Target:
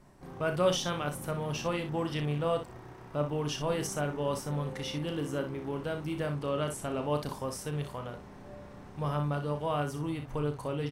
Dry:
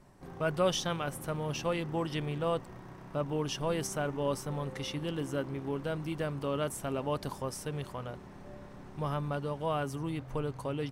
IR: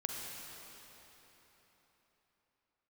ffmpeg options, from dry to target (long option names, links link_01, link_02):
-filter_complex "[0:a]asettb=1/sr,asplit=3[link_01][link_02][link_03];[link_01]atrim=end=6.344[link_04];[link_02]atrim=start=6.34:end=7.04,asetpts=PTS-STARTPTS,afade=type=in:duration=0.004:curve=qsin,afade=type=out:start_time=0.696:duration=0.004:curve=qsin,lowpass=11000[link_05];[link_03]atrim=start=7.036[link_06];[link_04][link_05]acrossfade=duration=0.004:curve1=hsin:curve2=qsin[link_07];[link_07][link_06]acrossfade=duration=0.004:curve1=qsin:curve2=hsin,aecho=1:1:34|61:0.376|0.335"